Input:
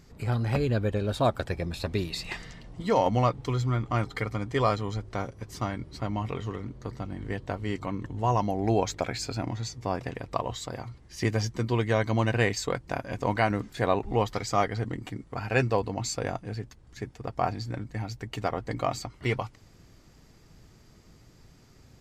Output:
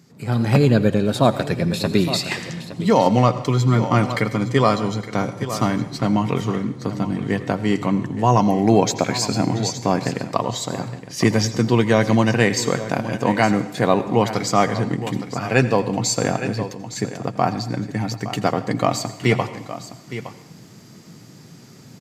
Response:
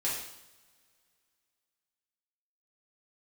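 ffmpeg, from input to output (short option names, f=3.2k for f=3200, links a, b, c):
-filter_complex "[0:a]highpass=f=150:w=0.5412,highpass=f=150:w=1.3066,bass=f=250:g=9,treble=f=4k:g=4,aecho=1:1:865:0.211,asplit=2[a][b];[1:a]atrim=start_sample=2205,adelay=82[c];[b][c]afir=irnorm=-1:irlink=0,volume=-19dB[d];[a][d]amix=inputs=2:normalize=0,dynaudnorm=f=220:g=3:m=10dB"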